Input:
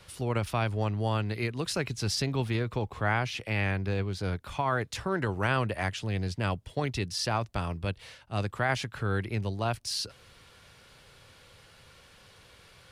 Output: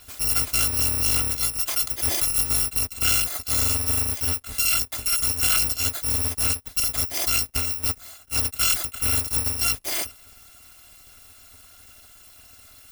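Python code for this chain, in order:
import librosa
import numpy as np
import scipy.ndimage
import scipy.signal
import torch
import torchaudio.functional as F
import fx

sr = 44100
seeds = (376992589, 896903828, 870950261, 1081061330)

y = fx.bit_reversed(x, sr, seeds[0], block=256)
y = y * librosa.db_to_amplitude(6.5)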